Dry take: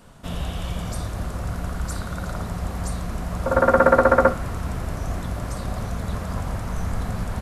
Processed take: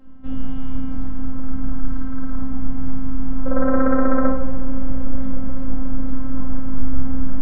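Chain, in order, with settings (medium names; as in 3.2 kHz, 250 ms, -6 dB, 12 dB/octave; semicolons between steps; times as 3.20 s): tone controls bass +8 dB, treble -7 dB; 3.48–5.40 s: upward compressor, threshold -15 dBFS; robot voice 262 Hz; tape spacing loss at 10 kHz 40 dB; bucket-brigade echo 360 ms, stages 2048, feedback 85%, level -20 dB; on a send at -1.5 dB: reverberation RT60 0.80 s, pre-delay 7 ms; on the sum: trim -1.5 dB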